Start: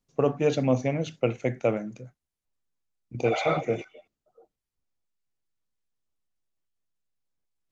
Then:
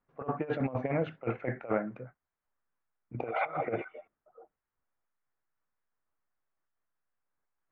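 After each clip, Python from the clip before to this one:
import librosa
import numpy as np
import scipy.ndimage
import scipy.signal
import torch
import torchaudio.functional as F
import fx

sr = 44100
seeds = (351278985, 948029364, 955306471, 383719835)

y = scipy.signal.sosfilt(scipy.signal.butter(4, 1600.0, 'lowpass', fs=sr, output='sos'), x)
y = fx.tilt_shelf(y, sr, db=-9.0, hz=670.0)
y = fx.over_compress(y, sr, threshold_db=-31.0, ratio=-0.5)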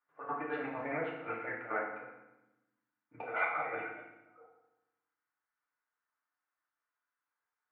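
y = fx.bandpass_q(x, sr, hz=1500.0, q=1.6)
y = fx.rev_fdn(y, sr, rt60_s=0.95, lf_ratio=1.6, hf_ratio=0.9, size_ms=20.0, drr_db=-4.0)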